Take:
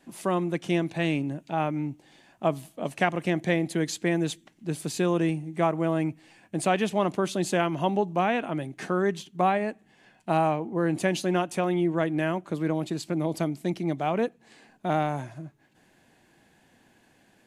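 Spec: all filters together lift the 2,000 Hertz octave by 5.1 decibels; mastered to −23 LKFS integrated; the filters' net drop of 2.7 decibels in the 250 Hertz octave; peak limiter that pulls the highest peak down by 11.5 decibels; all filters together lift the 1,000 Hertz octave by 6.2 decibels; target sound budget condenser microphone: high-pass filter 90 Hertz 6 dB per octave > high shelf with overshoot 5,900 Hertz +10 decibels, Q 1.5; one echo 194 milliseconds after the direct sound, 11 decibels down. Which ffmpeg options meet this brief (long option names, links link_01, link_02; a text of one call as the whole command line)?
ffmpeg -i in.wav -af "equalizer=frequency=250:width_type=o:gain=-4.5,equalizer=frequency=1000:width_type=o:gain=8.5,equalizer=frequency=2000:width_type=o:gain=4.5,alimiter=limit=-14dB:level=0:latency=1,highpass=frequency=90:poles=1,highshelf=frequency=5900:width_type=q:width=1.5:gain=10,aecho=1:1:194:0.282,volume=4.5dB" out.wav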